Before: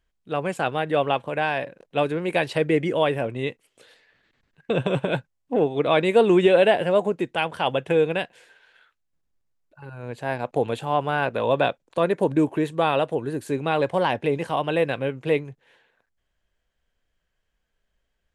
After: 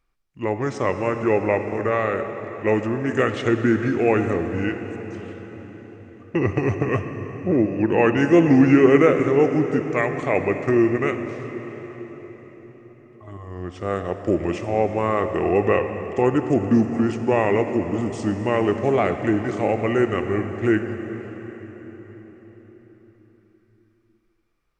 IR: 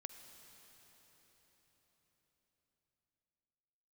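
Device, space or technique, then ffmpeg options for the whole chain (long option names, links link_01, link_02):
slowed and reverbed: -filter_complex "[0:a]asetrate=32634,aresample=44100[link_01];[1:a]atrim=start_sample=2205[link_02];[link_01][link_02]afir=irnorm=-1:irlink=0,volume=7dB"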